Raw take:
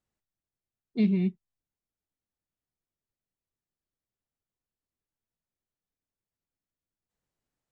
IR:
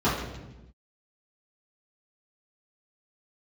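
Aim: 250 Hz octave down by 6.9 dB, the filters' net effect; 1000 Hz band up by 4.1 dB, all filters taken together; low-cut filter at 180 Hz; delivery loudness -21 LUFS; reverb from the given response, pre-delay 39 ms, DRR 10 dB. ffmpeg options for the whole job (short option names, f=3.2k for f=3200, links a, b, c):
-filter_complex "[0:a]highpass=180,equalizer=f=250:t=o:g=-7,equalizer=f=1k:t=o:g=7,asplit=2[a][b];[1:a]atrim=start_sample=2205,adelay=39[c];[b][c]afir=irnorm=-1:irlink=0,volume=-26dB[d];[a][d]amix=inputs=2:normalize=0,volume=12.5dB"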